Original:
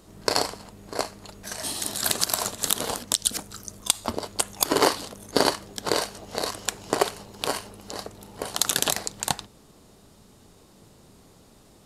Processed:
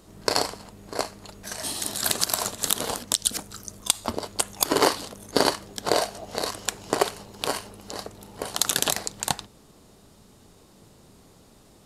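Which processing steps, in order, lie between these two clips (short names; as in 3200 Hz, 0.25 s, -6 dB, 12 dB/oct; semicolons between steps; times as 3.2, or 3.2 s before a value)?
5.88–6.32 bell 680 Hz +9 dB 0.43 oct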